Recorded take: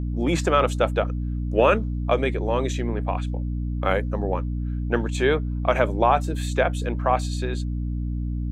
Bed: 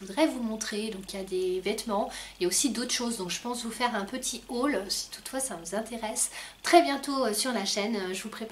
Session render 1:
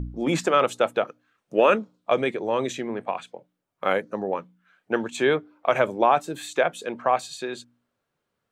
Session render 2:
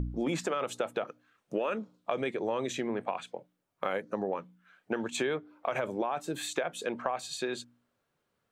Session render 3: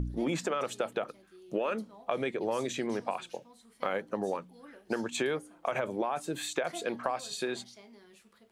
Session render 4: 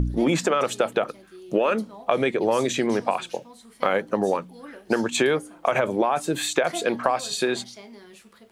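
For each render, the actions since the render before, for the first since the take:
de-hum 60 Hz, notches 5
peak limiter -13 dBFS, peak gain reduction 7.5 dB; compression, threshold -28 dBFS, peak gain reduction 9.5 dB
add bed -24.5 dB
trim +10 dB

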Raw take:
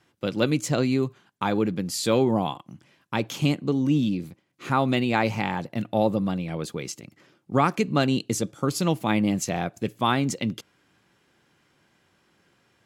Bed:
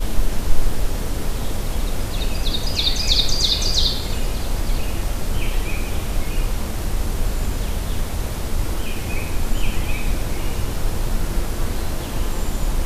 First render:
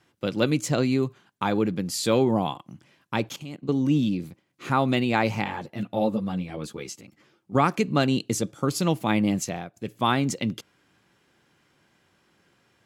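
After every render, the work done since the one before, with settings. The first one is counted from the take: 3.29–3.69 s: level held to a coarse grid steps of 18 dB; 5.44–7.55 s: three-phase chorus; 9.38–10.03 s: dip -11 dB, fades 0.29 s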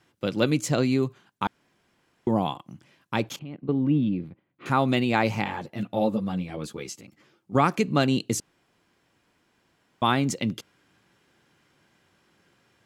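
1.47–2.27 s: room tone; 3.39–4.66 s: distance through air 440 m; 8.40–10.02 s: room tone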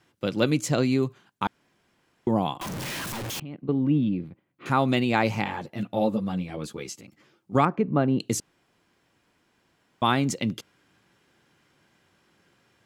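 2.61–3.40 s: one-bit comparator; 7.65–8.20 s: low-pass 1.2 kHz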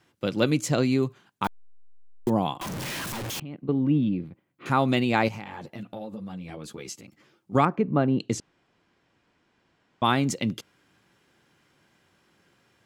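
1.44–2.30 s: send-on-delta sampling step -34.5 dBFS; 5.28–6.90 s: compression 5:1, threshold -34 dBFS; 8.07–10.04 s: distance through air 75 m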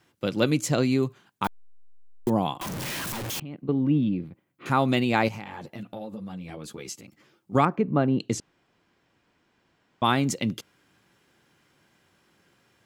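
treble shelf 11 kHz +5 dB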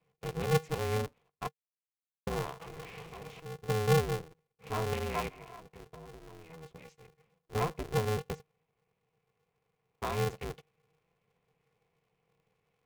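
vowel filter u; polarity switched at an audio rate 160 Hz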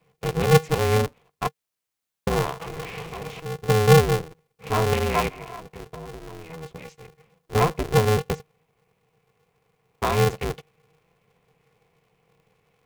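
trim +11.5 dB

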